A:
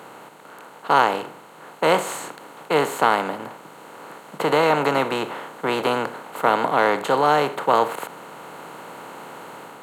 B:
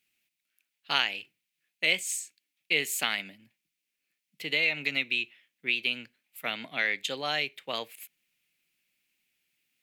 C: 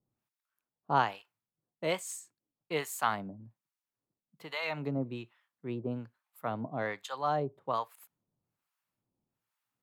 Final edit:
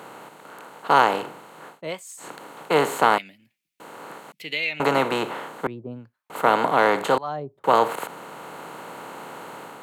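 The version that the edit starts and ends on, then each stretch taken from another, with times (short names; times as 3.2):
A
1.74–2.25 from C, crossfade 0.16 s
3.18–3.8 from B
4.32–4.8 from B
5.67–6.3 from C
7.18–7.64 from C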